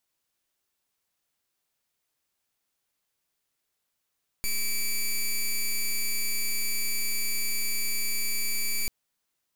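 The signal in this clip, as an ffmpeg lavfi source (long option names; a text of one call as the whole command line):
ffmpeg -f lavfi -i "aevalsrc='0.0473*(2*lt(mod(2310*t,1),0.09)-1)':duration=4.44:sample_rate=44100" out.wav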